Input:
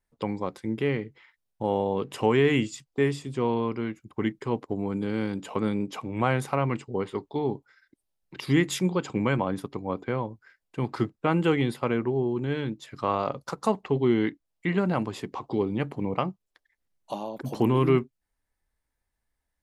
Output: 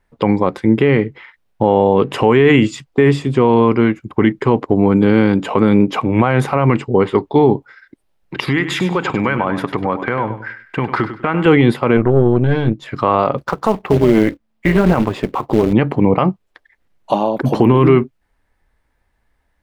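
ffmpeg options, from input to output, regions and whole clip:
-filter_complex "[0:a]asettb=1/sr,asplit=3[s0][s1][s2];[s0]atrim=end=8.484[s3];[s1]atrim=start=8.48:end=11.46,asetpts=PTS-STARTPTS,afade=t=in:d=0.004:c=qsin,afade=t=out:st=2.976:d=0.004:c=qsin,equalizer=f=1700:w=0.68:g=9.5,acompressor=threshold=0.0251:ratio=4:attack=3.2:release=140:knee=1:detection=peak,aecho=1:1:99|198|297:0.282|0.0789|0.0221,atrim=end_sample=131418[s4];[s2]atrim=start=11.456[s5];[s3][s4]acrossfade=d=0.004:c1=hsin:c2=qsin[s6];[s6][s5]acrossfade=d=0.004:c1=qsin:c2=hsin,asettb=1/sr,asplit=3[s7][s8][s9];[s7]atrim=end=11.974[s10];[s8]atrim=start=11.97:end=12.86,asetpts=PTS-STARTPTS,afade=t=in:d=0.004:c=qsin,afade=t=out:st=0.886:d=0.004:c=qsin,equalizer=f=120:t=o:w=1.1:g=5.5,aeval=exprs='(tanh(10*val(0)+0.8)-tanh(0.8))/10':c=same[s11];[s9]atrim=start=12.856[s12];[s10][s11]acrossfade=d=0.004:c1=hsin:c2=qsin[s13];[s13][s12]acrossfade=d=0.004:c1=qsin:c2=hsin,asettb=1/sr,asplit=3[s14][s15][s16];[s14]atrim=end=13.384[s17];[s15]atrim=start=13.38:end=15.73,asetpts=PTS-STARTPTS,afade=t=in:d=0.004:c=qsin,afade=t=out:st=2.346:d=0.004:c=qsin,equalizer=f=8900:w=0.36:g=-3.5,tremolo=f=220:d=0.621,acrusher=bits=4:mode=log:mix=0:aa=0.000001[s18];[s16]atrim=start=15.726[s19];[s17][s18]acrossfade=d=0.004:c1=hsin:c2=qsin[s20];[s20][s19]acrossfade=d=0.004:c1=qsin:c2=hsin,bass=f=250:g=-1,treble=f=4000:g=-13,alimiter=level_in=8.91:limit=0.891:release=50:level=0:latency=1,volume=0.891"

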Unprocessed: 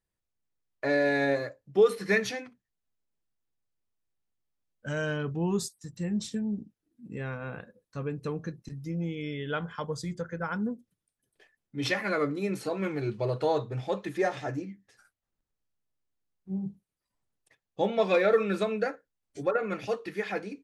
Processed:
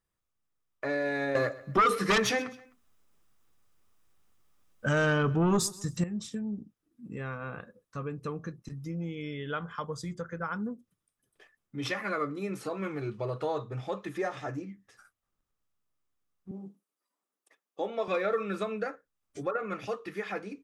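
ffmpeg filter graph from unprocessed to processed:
-filter_complex "[0:a]asettb=1/sr,asplit=3[s0][s1][s2];[s0]atrim=end=1.354[s3];[s1]atrim=start=1.35:end=6.04,asetpts=PTS-STARTPTS,afade=t=in:d=0.004:c=qsin,afade=t=out:st=4.686:d=0.004:c=qsin,aeval=exprs='0.237*sin(PI/2*3.16*val(0)/0.237)':c=same,aecho=1:1:129|258:0.0891|0.0267,atrim=end_sample=206829[s4];[s2]atrim=start=6.036[s5];[s3][s4]acrossfade=d=0.004:c1=hsin:c2=qsin[s6];[s6][s5]acrossfade=d=0.004:c1=qsin:c2=hsin,asettb=1/sr,asplit=3[s7][s8][s9];[s7]atrim=end=16.514[s10];[s8]atrim=start=16.51:end=18.08,asetpts=PTS-STARTPTS,afade=t=in:d=0.004:c=qsin,afade=t=out:st=1.566:d=0.004:c=qsin,highpass=f=260:w=0.5412,highpass=f=260:w=1.3066,equalizer=f=2400:w=0.42:g=-3.5[s11];[s9]atrim=start=18.076[s12];[s10][s11]acrossfade=d=0.004:c1=hsin:c2=qsin[s13];[s13][s12]acrossfade=d=0.004:c1=qsin:c2=hsin,equalizer=f=1200:t=o:w=0.32:g=9,bandreject=f=4300:w=12,acompressor=threshold=0.00794:ratio=1.5,volume=1.19"

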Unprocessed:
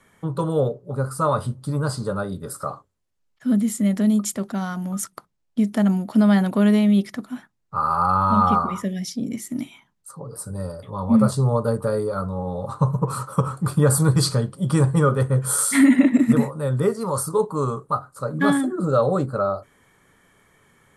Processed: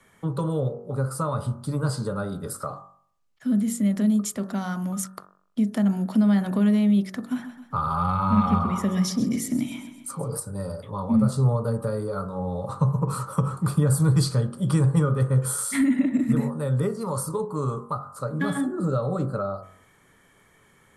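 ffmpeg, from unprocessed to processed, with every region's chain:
-filter_complex "[0:a]asettb=1/sr,asplit=3[s0][s1][s2];[s0]atrim=end=7.314[s3];[s1]atrim=start=7.31:end=10.4,asetpts=PTS-STARTPTS,afade=t=in:d=0.004:c=qsin,afade=t=out:st=3.086:d=0.004:c=qsin,acontrast=72,aecho=1:1:131|262|393|524|655:0.224|0.11|0.0538|0.0263|0.0129,atrim=end_sample=136269[s4];[s2]atrim=start=10.396[s5];[s3][s4]acrossfade=d=0.004:c1=hsin:c2=qsin[s6];[s6][s5]acrossfade=d=0.004:c1=qsin:c2=hsin,bandreject=f=47.16:t=h:w=4,bandreject=f=94.32:t=h:w=4,bandreject=f=141.48:t=h:w=4,bandreject=f=188.64:t=h:w=4,bandreject=f=235.8:t=h:w=4,bandreject=f=282.96:t=h:w=4,bandreject=f=330.12:t=h:w=4,bandreject=f=377.28:t=h:w=4,bandreject=f=424.44:t=h:w=4,bandreject=f=471.6:t=h:w=4,bandreject=f=518.76:t=h:w=4,bandreject=f=565.92:t=h:w=4,bandreject=f=613.08:t=h:w=4,bandreject=f=660.24:t=h:w=4,bandreject=f=707.4:t=h:w=4,bandreject=f=754.56:t=h:w=4,bandreject=f=801.72:t=h:w=4,bandreject=f=848.88:t=h:w=4,bandreject=f=896.04:t=h:w=4,bandreject=f=943.2:t=h:w=4,bandreject=f=990.36:t=h:w=4,bandreject=f=1037.52:t=h:w=4,bandreject=f=1084.68:t=h:w=4,bandreject=f=1131.84:t=h:w=4,bandreject=f=1179:t=h:w=4,bandreject=f=1226.16:t=h:w=4,bandreject=f=1273.32:t=h:w=4,bandreject=f=1320.48:t=h:w=4,bandreject=f=1367.64:t=h:w=4,bandreject=f=1414.8:t=h:w=4,bandreject=f=1461.96:t=h:w=4,bandreject=f=1509.12:t=h:w=4,bandreject=f=1556.28:t=h:w=4,bandreject=f=1603.44:t=h:w=4,bandreject=f=1650.6:t=h:w=4,bandreject=f=1697.76:t=h:w=4,bandreject=f=1744.92:t=h:w=4,bandreject=f=1792.08:t=h:w=4,acrossover=split=210[s7][s8];[s8]acompressor=threshold=0.0398:ratio=3[s9];[s7][s9]amix=inputs=2:normalize=0"

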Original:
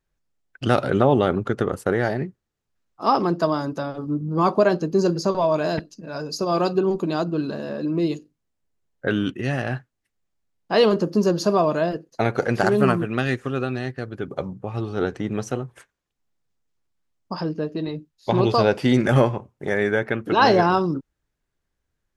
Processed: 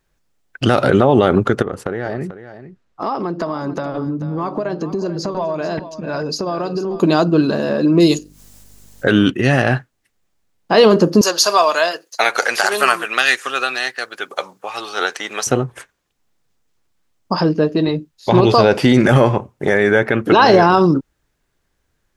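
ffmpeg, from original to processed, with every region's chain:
-filter_complex "[0:a]asettb=1/sr,asplit=3[s0][s1][s2];[s0]atrim=end=1.624[s3];[s1]atrim=start=1.62:end=7,asetpts=PTS-STARTPTS,afade=t=in:d=0.004:c=qsin,afade=t=out:st=5.376:d=0.004:c=qsin,aemphasis=mode=reproduction:type=50fm,acompressor=threshold=0.0355:ratio=10:attack=3.2:release=140:knee=1:detection=peak,aecho=1:1:439:0.224,atrim=end_sample=237258[s4];[s2]atrim=start=6.996[s5];[s3][s4]acrossfade=d=0.004:c1=hsin:c2=qsin[s6];[s6][s5]acrossfade=d=0.004:c1=qsin:c2=hsin,asettb=1/sr,asplit=3[s7][s8][s9];[s7]atrim=end=8.004[s10];[s8]atrim=start=8:end=9.11,asetpts=PTS-STARTPTS,afade=t=in:d=0.004:c=qsin,afade=t=out:st=1.106:d=0.004:c=qsin,acompressor=mode=upward:threshold=0.01:ratio=2.5:attack=3.2:release=140:knee=2.83:detection=peak,bass=f=250:g=0,treble=f=4000:g=13,aeval=exprs='val(0)+0.00126*(sin(2*PI*50*n/s)+sin(2*PI*2*50*n/s)/2+sin(2*PI*3*50*n/s)/3+sin(2*PI*4*50*n/s)/4+sin(2*PI*5*50*n/s)/5)':c=same[s11];[s9]atrim=start=9.106[s12];[s10][s11]acrossfade=d=0.004:c1=hsin:c2=qsin[s13];[s13][s12]acrossfade=d=0.004:c1=qsin:c2=hsin,asettb=1/sr,asplit=3[s14][s15][s16];[s14]atrim=end=11.214[s17];[s15]atrim=start=11.21:end=15.47,asetpts=PTS-STARTPTS,afade=t=in:d=0.004:c=qsin,afade=t=out:st=4.256:d=0.004:c=qsin,highpass=890,highshelf=f=3000:g=10.5[s18];[s16]atrim=start=15.466[s19];[s17][s18]acrossfade=d=0.004:c1=hsin:c2=qsin[s20];[s20][s19]acrossfade=d=0.004:c1=qsin:c2=hsin,lowshelf=f=210:g=-3.5,alimiter=level_in=4.47:limit=0.891:release=50:level=0:latency=1,volume=0.891"

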